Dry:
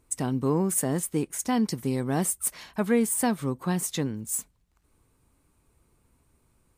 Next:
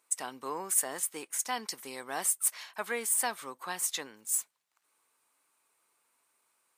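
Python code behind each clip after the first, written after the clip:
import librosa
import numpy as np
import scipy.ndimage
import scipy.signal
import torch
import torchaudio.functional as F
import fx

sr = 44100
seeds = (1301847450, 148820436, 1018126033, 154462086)

y = scipy.signal.sosfilt(scipy.signal.butter(2, 890.0, 'highpass', fs=sr, output='sos'), x)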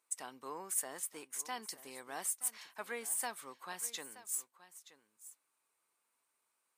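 y = x + 10.0 ** (-16.0 / 20.0) * np.pad(x, (int(925 * sr / 1000.0), 0))[:len(x)]
y = F.gain(torch.from_numpy(y), -8.0).numpy()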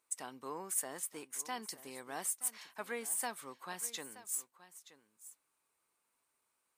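y = fx.low_shelf(x, sr, hz=300.0, db=7.0)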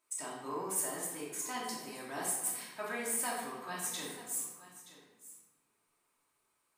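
y = fx.room_shoebox(x, sr, seeds[0], volume_m3=650.0, walls='mixed', distance_m=2.8)
y = F.gain(torch.from_numpy(y), -2.5).numpy()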